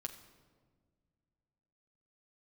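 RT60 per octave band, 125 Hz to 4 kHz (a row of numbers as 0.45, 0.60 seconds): 2.8, 2.6, 2.0, 1.4, 1.1, 0.95 seconds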